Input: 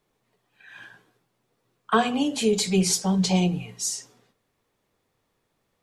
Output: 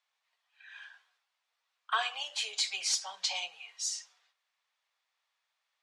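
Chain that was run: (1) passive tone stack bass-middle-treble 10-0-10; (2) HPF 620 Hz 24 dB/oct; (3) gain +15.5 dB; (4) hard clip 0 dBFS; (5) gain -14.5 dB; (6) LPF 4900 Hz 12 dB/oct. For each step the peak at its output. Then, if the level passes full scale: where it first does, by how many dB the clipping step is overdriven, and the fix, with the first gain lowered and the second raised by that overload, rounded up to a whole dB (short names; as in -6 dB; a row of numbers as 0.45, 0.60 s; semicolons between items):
-10.5, -10.5, +5.0, 0.0, -14.5, -17.0 dBFS; step 3, 5.0 dB; step 3 +10.5 dB, step 5 -9.5 dB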